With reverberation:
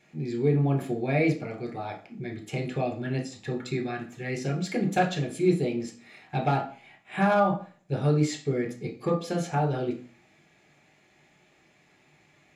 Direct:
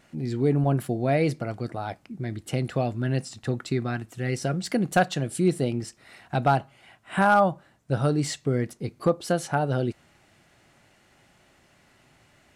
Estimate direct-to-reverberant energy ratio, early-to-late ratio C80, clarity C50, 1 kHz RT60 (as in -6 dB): 1.0 dB, 15.5 dB, 10.5 dB, 0.40 s